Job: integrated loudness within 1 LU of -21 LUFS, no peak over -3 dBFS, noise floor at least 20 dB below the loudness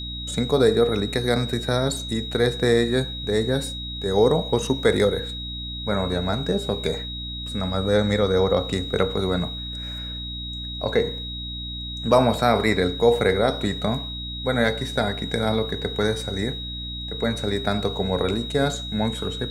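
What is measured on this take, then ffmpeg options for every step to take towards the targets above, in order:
hum 60 Hz; highest harmonic 300 Hz; hum level -32 dBFS; steady tone 3.8 kHz; tone level -32 dBFS; loudness -23.5 LUFS; peak level -3.5 dBFS; loudness target -21.0 LUFS
-> -af "bandreject=f=60:t=h:w=6,bandreject=f=120:t=h:w=6,bandreject=f=180:t=h:w=6,bandreject=f=240:t=h:w=6,bandreject=f=300:t=h:w=6"
-af "bandreject=f=3800:w=30"
-af "volume=1.33,alimiter=limit=0.708:level=0:latency=1"

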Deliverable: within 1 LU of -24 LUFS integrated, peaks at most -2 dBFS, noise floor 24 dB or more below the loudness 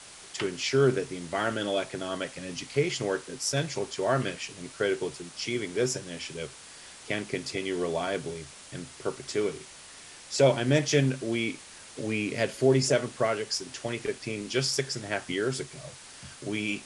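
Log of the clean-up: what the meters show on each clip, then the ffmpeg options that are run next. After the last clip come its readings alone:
noise floor -48 dBFS; noise floor target -54 dBFS; loudness -29.5 LUFS; peak level -8.5 dBFS; loudness target -24.0 LUFS
-> -af "afftdn=nr=6:nf=-48"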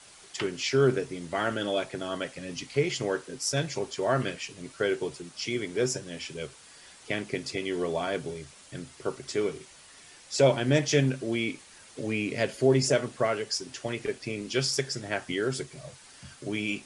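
noise floor -53 dBFS; noise floor target -54 dBFS
-> -af "afftdn=nr=6:nf=-53"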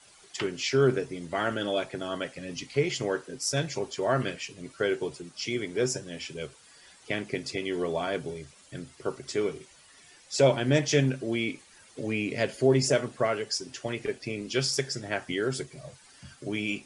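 noise floor -56 dBFS; loudness -29.5 LUFS; peak level -8.5 dBFS; loudness target -24.0 LUFS
-> -af "volume=1.88"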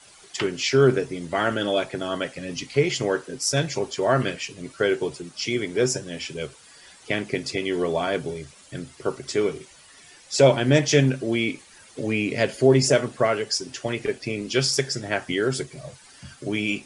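loudness -24.0 LUFS; peak level -3.0 dBFS; noise floor -51 dBFS

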